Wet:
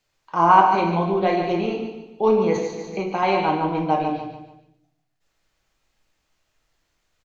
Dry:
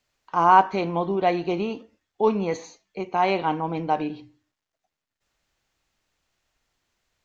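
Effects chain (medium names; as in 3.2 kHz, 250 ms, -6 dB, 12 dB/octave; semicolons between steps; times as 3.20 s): feedback delay 145 ms, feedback 38%, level -8 dB; simulated room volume 89 m³, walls mixed, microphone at 0.63 m; 2.56–3.23 s: three bands compressed up and down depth 100%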